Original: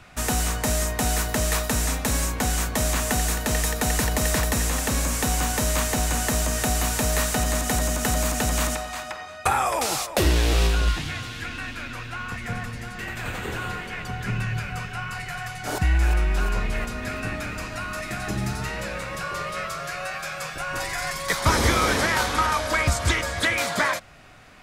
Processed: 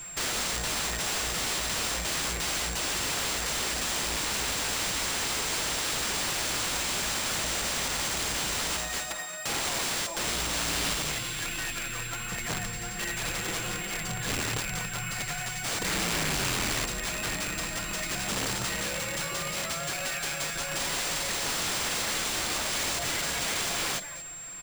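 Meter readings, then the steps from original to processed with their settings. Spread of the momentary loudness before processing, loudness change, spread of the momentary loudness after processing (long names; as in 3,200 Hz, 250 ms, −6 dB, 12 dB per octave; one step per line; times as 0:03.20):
10 LU, −4.0 dB, 4 LU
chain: high-shelf EQ 2,600 Hz +8 dB
comb filter 5.9 ms, depth 98%
dynamic equaliser 1,200 Hz, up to −7 dB, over −35 dBFS, Q 1.9
brickwall limiter −14 dBFS, peak gain reduction 11 dB
single-tap delay 224 ms −16.5 dB
sample-rate reduction 14,000 Hz, jitter 20%
wrap-around overflow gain 20 dB
steady tone 7,500 Hz −34 dBFS
level −5 dB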